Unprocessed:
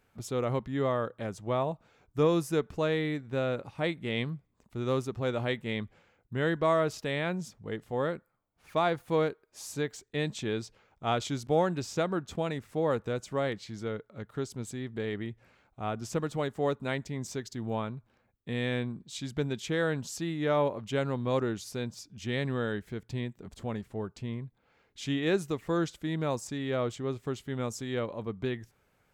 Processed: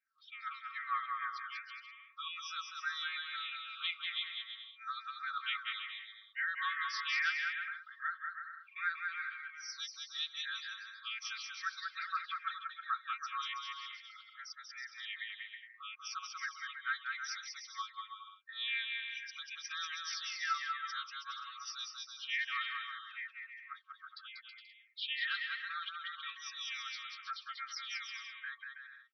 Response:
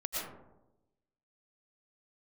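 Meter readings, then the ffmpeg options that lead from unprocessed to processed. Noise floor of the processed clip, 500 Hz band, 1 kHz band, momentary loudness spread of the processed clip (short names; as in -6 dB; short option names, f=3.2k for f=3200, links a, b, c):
-61 dBFS, under -40 dB, -5.0 dB, 12 LU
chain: -af "afftfilt=real='re*pow(10,22/40*sin(2*PI*(0.52*log(max(b,1)*sr/1024/100)/log(2)-(-2.5)*(pts-256)/sr)))':imag='im*pow(10,22/40*sin(2*PI*(0.52*log(max(b,1)*sr/1024/100)/log(2)-(-2.5)*(pts-256)/sr)))':win_size=1024:overlap=0.75,afftdn=nr=18:nf=-44,aecho=1:1:3.8:0.98,alimiter=limit=-14.5dB:level=0:latency=1:release=63,aecho=1:1:190|323|416.1|481.3|526.9:0.631|0.398|0.251|0.158|0.1,afftfilt=real='re*between(b*sr/4096,1100,6000)':imag='im*between(b*sr/4096,1100,6000)':win_size=4096:overlap=0.75,volume=-7dB"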